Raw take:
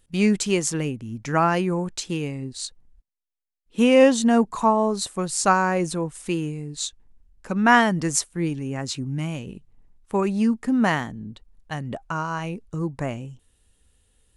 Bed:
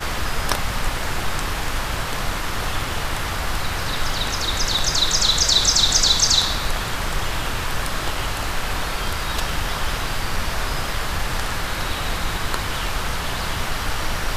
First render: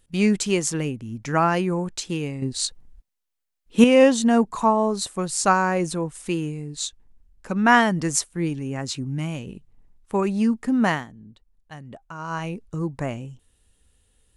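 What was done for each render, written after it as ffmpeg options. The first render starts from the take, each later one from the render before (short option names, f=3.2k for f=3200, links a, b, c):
-filter_complex "[0:a]asplit=5[a][b][c][d][e];[a]atrim=end=2.422[f];[b]atrim=start=2.418:end=3.842,asetpts=PTS-STARTPTS,volume=6.5dB[g];[c]atrim=start=3.838:end=11.06,asetpts=PTS-STARTPTS,afade=t=out:st=7.062:d=0.16:silence=0.334965[h];[d]atrim=start=11.06:end=12.18,asetpts=PTS-STARTPTS,volume=-9.5dB[i];[e]atrim=start=12.18,asetpts=PTS-STARTPTS,afade=t=in:d=0.16:silence=0.334965[j];[f][g]acrossfade=d=0.004:c1=hsin:c2=hsin[k];[h][i][j]concat=n=3:v=0:a=1[l];[k][l]acrossfade=d=0.004:c1=hsin:c2=hsin"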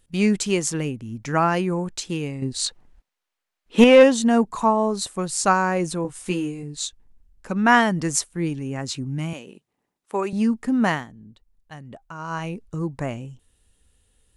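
-filter_complex "[0:a]asplit=3[a][b][c];[a]afade=t=out:st=2.65:d=0.02[d];[b]asplit=2[e][f];[f]highpass=f=720:p=1,volume=17dB,asoftclip=type=tanh:threshold=-1dB[g];[e][g]amix=inputs=2:normalize=0,lowpass=f=2k:p=1,volume=-6dB,afade=t=in:st=2.65:d=0.02,afade=t=out:st=4.02:d=0.02[h];[c]afade=t=in:st=4.02:d=0.02[i];[d][h][i]amix=inputs=3:normalize=0,asettb=1/sr,asplit=3[j][k][l];[j]atrim=end=6.034[m];[k]atrim=start=6.03:end=6.63,asetpts=PTS-STARTPTS,afade=t=in:d=0.004:c=qsin,afade=t=out:st=0.596:d=0.004:c=qsin,asplit=2[n][o];[o]adelay=16,volume=-4dB[p];[n][p]amix=inputs=2:normalize=0,atrim=end_sample=26460[q];[l]atrim=start=6.626[r];[m][q]acrossfade=d=0.004:c1=hsin:c2=qsin[s];[s][r]acrossfade=d=0.004:c1=qsin:c2=hsin,asettb=1/sr,asplit=3[t][u][v];[t]atrim=end=9.334[w];[u]atrim=start=9.33:end=10.33,asetpts=PTS-STARTPTS,afade=t=in:d=0.004:c=qsin,afade=t=out:st=0.996:d=0.004:c=qsin,highpass=330[x];[v]atrim=start=10.326[y];[w][x]acrossfade=d=0.004:c1=hsin:c2=qsin[z];[z][y]acrossfade=d=0.004:c1=qsin:c2=hsin"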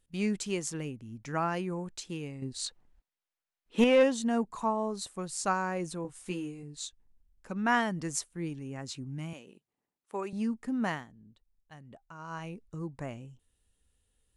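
-af "volume=-11dB"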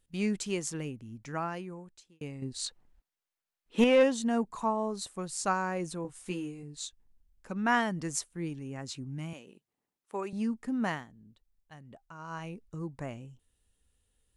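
-filter_complex "[0:a]asplit=2[a][b];[a]atrim=end=2.21,asetpts=PTS-STARTPTS,afade=t=out:st=1:d=1.21[c];[b]atrim=start=2.21,asetpts=PTS-STARTPTS,afade=t=in:d=0.004:c=hsin[d];[c][d]concat=n=2:v=0:a=1"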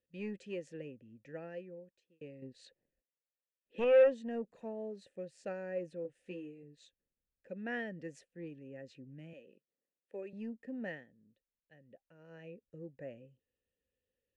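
-filter_complex "[0:a]asplit=3[a][b][c];[a]bandpass=f=530:t=q:w=8,volume=0dB[d];[b]bandpass=f=1.84k:t=q:w=8,volume=-6dB[e];[c]bandpass=f=2.48k:t=q:w=8,volume=-9dB[f];[d][e][f]amix=inputs=3:normalize=0,acrossover=split=290[g][h];[g]aeval=exprs='0.015*sin(PI/2*3.16*val(0)/0.015)':c=same[i];[i][h]amix=inputs=2:normalize=0"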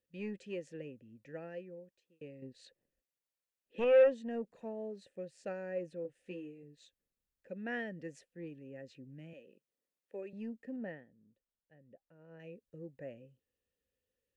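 -filter_complex "[0:a]asettb=1/sr,asplit=3[a][b][c];[a]atrim=end=10.764[d];[b]atrim=start=10.76:end=12.4,asetpts=PTS-STARTPTS,afade=t=in:d=0.004:c=qsin,afade=t=out:st=1.636:d=0.004:c=qsin,lowpass=f=1.1k:p=1[e];[c]atrim=start=12.396[f];[d][e]acrossfade=d=0.004:c1=hsin:c2=qsin[g];[g][f]acrossfade=d=0.004:c1=qsin:c2=hsin"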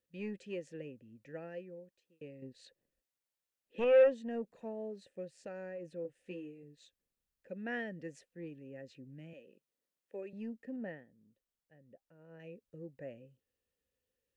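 -filter_complex "[0:a]asettb=1/sr,asplit=3[a][b][c];[a]atrim=end=5.324[d];[b]atrim=start=5.32:end=5.9,asetpts=PTS-STARTPTS,afade=t=in:d=0.004:c=qsin,afade=t=out:st=0.576:d=0.004:c=qsin,acompressor=threshold=-40dB:ratio=6:attack=3.2:release=140:knee=1:detection=peak[e];[c]atrim=start=5.896[f];[d][e]acrossfade=d=0.004:c1=hsin:c2=qsin[g];[g][f]acrossfade=d=0.004:c1=qsin:c2=hsin"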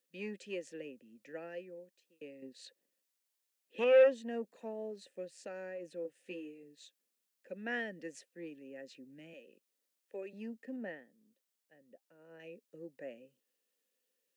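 -af "highpass=f=210:w=0.5412,highpass=f=210:w=1.3066,highshelf=f=2.4k:g=7.5"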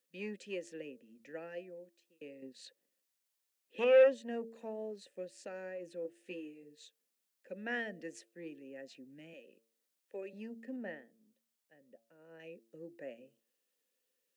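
-af "bandreject=f=113.7:t=h:w=4,bandreject=f=227.4:t=h:w=4,bandreject=f=341.1:t=h:w=4,bandreject=f=454.8:t=h:w=4,bandreject=f=568.5:t=h:w=4,bandreject=f=682.2:t=h:w=4"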